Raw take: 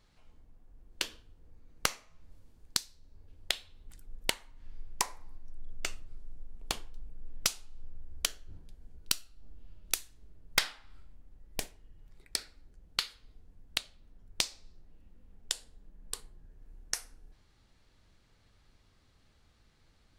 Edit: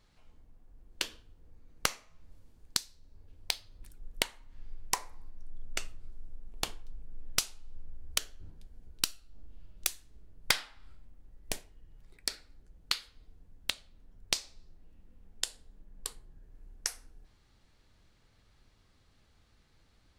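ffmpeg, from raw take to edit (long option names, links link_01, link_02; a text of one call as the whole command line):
ffmpeg -i in.wav -filter_complex "[0:a]asplit=3[link_01][link_02][link_03];[link_01]atrim=end=3.484[link_04];[link_02]atrim=start=3.48:end=3.95,asetpts=PTS-STARTPTS,asetrate=52479,aresample=44100[link_05];[link_03]atrim=start=3.946[link_06];[link_04][link_05]acrossfade=duration=0.004:curve1=hsin:curve2=hsin[link_07];[link_07][link_06]acrossfade=duration=0.004:curve1=hsin:curve2=hsin" out.wav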